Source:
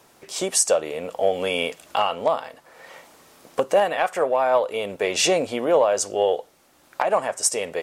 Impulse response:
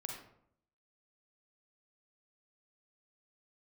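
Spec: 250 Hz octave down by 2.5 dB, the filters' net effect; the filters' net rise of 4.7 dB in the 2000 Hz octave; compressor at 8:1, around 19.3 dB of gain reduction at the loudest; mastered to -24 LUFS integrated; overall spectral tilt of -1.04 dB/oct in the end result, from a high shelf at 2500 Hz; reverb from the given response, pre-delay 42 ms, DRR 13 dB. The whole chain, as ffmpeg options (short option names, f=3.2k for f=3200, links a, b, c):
-filter_complex "[0:a]equalizer=f=250:t=o:g=-4,equalizer=f=2k:t=o:g=3.5,highshelf=f=2.5k:g=5,acompressor=threshold=-32dB:ratio=8,asplit=2[a][b];[1:a]atrim=start_sample=2205,adelay=42[c];[b][c]afir=irnorm=-1:irlink=0,volume=-11.5dB[d];[a][d]amix=inputs=2:normalize=0,volume=11.5dB"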